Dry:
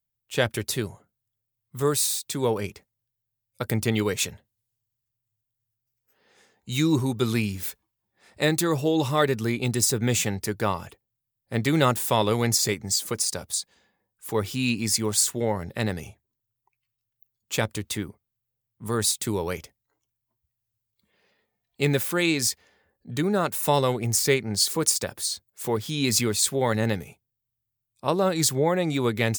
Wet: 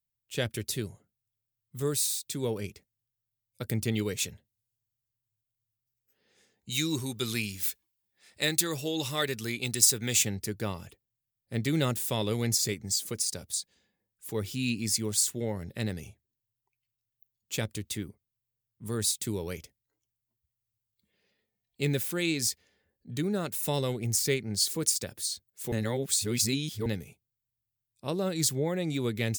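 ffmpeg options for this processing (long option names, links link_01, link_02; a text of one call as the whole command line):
ffmpeg -i in.wav -filter_complex "[0:a]asettb=1/sr,asplit=3[link_01][link_02][link_03];[link_01]atrim=end=6.704[link_04];[link_02]atrim=start=6.7:end=10.23,asetpts=PTS-STARTPTS,afade=type=in:duration=0.004:curve=qsin,afade=type=out:start_time=3.526:duration=0.004:curve=qsin,tiltshelf=frequency=680:gain=-6[link_05];[link_03]atrim=start=10.226[link_06];[link_04][link_05]acrossfade=duration=0.004:curve1=hsin:curve2=qsin[link_07];[link_07][link_06]acrossfade=duration=0.004:curve1=qsin:curve2=hsin,asplit=3[link_08][link_09][link_10];[link_08]atrim=end=25.722[link_11];[link_09]atrim=start=25.718:end=26.862,asetpts=PTS-STARTPTS,areverse[link_12];[link_10]atrim=start=26.858[link_13];[link_11][link_12]acrossfade=duration=0.004:curve1=hsin:curve2=hsin[link_14];[link_14][link_13]acrossfade=duration=0.004:curve1=hsin:curve2=hsin,equalizer=frequency=990:width_type=o:width=1.6:gain=-10.5,volume=-4dB" out.wav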